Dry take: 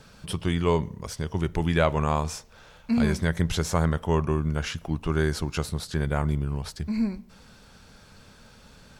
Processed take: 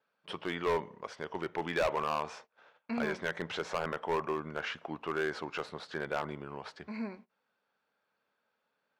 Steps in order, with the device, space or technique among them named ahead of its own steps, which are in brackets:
walkie-talkie (band-pass filter 470–2,400 Hz; hard clipping −25 dBFS, distortion −8 dB; noise gate −52 dBFS, range −23 dB)

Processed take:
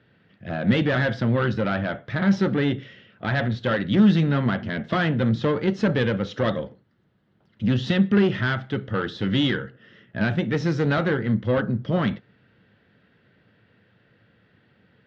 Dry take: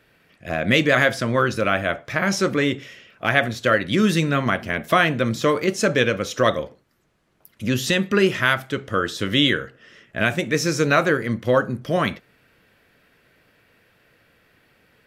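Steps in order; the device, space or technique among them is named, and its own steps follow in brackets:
guitar amplifier (tube saturation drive 16 dB, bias 0.45; bass and treble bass +4 dB, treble +4 dB; loudspeaker in its box 78–3,500 Hz, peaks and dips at 110 Hz +6 dB, 200 Hz +6 dB, 660 Hz −3 dB, 1,100 Hz −5 dB, 2,400 Hz −9 dB)

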